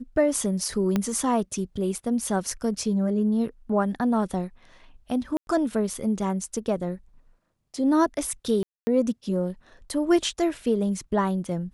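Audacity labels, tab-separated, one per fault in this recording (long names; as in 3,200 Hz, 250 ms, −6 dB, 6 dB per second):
0.960000	0.960000	click −11 dBFS
5.370000	5.470000	drop-out 101 ms
8.630000	8.870000	drop-out 240 ms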